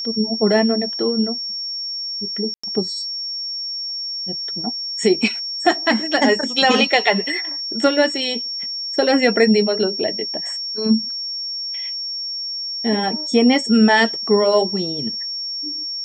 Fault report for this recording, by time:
whistle 5,500 Hz −24 dBFS
0:02.54–0:02.63: drop-out 95 ms

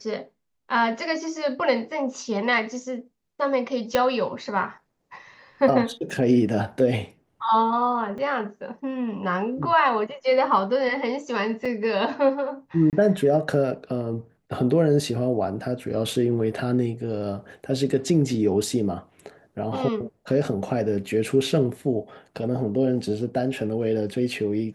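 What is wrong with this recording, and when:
0:03.95: click −6 dBFS
0:06.10: drop-out 2.2 ms
0:08.18: drop-out 3.9 ms
0:11.65: drop-out 4.6 ms
0:12.90–0:12.93: drop-out 28 ms

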